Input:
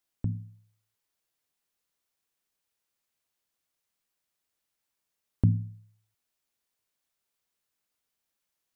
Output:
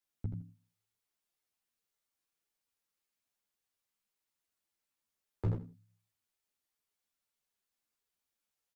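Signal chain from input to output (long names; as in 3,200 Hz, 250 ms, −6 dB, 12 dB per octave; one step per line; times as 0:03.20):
wave folding −18 dBFS
repeating echo 81 ms, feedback 17%, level −6 dB
string-ensemble chorus
level −3 dB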